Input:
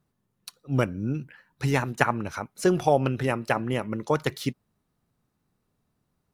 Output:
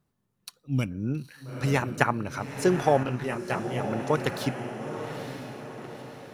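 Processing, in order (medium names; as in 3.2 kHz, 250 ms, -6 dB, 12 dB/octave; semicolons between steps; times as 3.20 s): echo that smears into a reverb 908 ms, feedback 51%, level -8.5 dB; 0.64–0.91 s: time-frequency box 310–2100 Hz -11 dB; 3.03–3.80 s: detune thickener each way 55 cents; trim -1 dB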